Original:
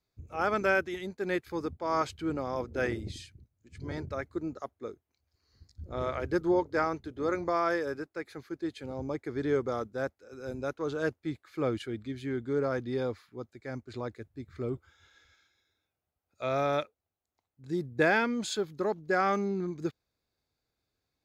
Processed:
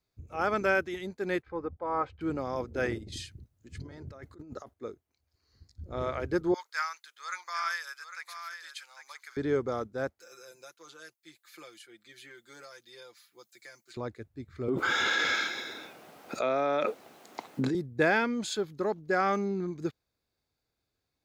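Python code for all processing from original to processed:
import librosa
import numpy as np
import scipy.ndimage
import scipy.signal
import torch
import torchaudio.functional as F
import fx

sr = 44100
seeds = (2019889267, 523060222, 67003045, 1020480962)

y = fx.chain(x, sr, fx.lowpass(hz=1400.0, slope=12),
    fx.peak_eq(hz=240.0, db=-11.0, octaves=0.68),
    fx.comb(ms=3.9, depth=0.44), at=(1.42, 2.21))
y = fx.chain(y, sr, fx.notch(hz=2300.0, q=13.0),
    fx.over_compress(threshold_db=-44.0, ratio=-1.0), at=(2.98, 4.74))
y = fx.chain(y, sr, fx.highpass(hz=1200.0, slope=24),
    fx.high_shelf(hz=3800.0, db=11.5),
    fx.echo_single(ms=802, db=-9.5), at=(6.54, 9.37))
y = fx.chain(y, sr, fx.differentiator(),
    fx.comb(ms=5.8, depth=0.81),
    fx.band_squash(depth_pct=100), at=(10.2, 13.97))
y = fx.chain(y, sr, fx.highpass(hz=190.0, slope=24),
    fx.high_shelf(hz=5300.0, db=-12.0),
    fx.env_flatten(amount_pct=100), at=(14.68, 17.75))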